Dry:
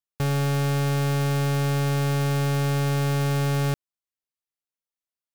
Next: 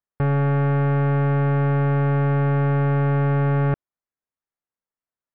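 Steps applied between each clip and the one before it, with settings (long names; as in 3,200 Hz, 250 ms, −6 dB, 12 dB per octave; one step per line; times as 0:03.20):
low-pass filter 1,900 Hz 24 dB per octave
level +4 dB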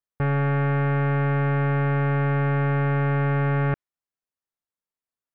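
dynamic equaliser 2,100 Hz, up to +7 dB, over −44 dBFS, Q 0.96
level −3 dB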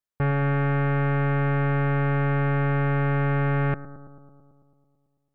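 bucket-brigade delay 110 ms, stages 1,024, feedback 72%, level −14 dB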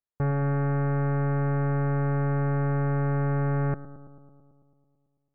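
Gaussian smoothing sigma 5.2 samples
level −2 dB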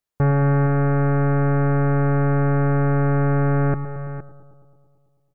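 single-tap delay 464 ms −13 dB
level +8 dB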